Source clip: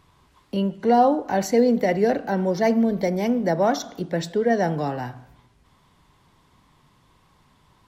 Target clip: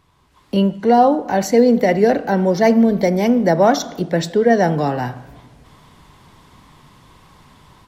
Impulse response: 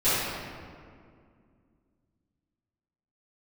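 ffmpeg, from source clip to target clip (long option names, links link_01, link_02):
-filter_complex "[0:a]dynaudnorm=framelen=290:gausssize=3:maxgain=12.5dB,asplit=2[link_01][link_02];[1:a]atrim=start_sample=2205[link_03];[link_02][link_03]afir=irnorm=-1:irlink=0,volume=-39dB[link_04];[link_01][link_04]amix=inputs=2:normalize=0,volume=-1dB"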